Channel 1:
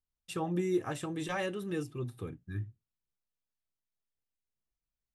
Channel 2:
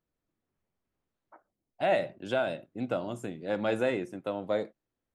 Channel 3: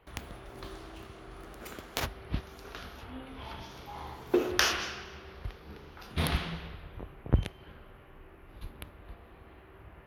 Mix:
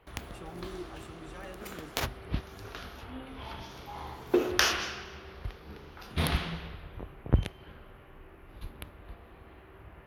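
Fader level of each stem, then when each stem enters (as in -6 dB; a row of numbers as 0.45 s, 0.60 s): -12.5 dB, mute, +1.0 dB; 0.05 s, mute, 0.00 s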